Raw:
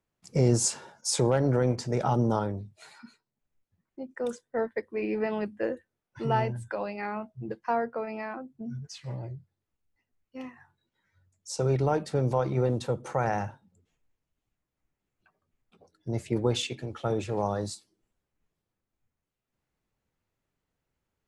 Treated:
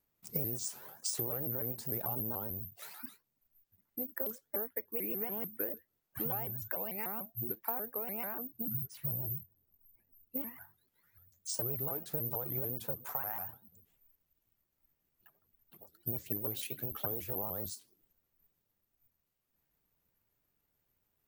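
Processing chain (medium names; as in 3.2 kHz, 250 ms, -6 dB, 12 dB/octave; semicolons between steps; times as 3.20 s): 8.74–10.42 s: tilt shelf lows +7.5 dB; careless resampling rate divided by 3×, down none, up zero stuff; compression 6:1, threshold -31 dBFS, peak gain reduction 19 dB; 13.04–13.49 s: resonant low shelf 650 Hz -8.5 dB, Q 1.5; vibrato with a chosen wave saw up 6.8 Hz, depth 250 cents; trim -1.5 dB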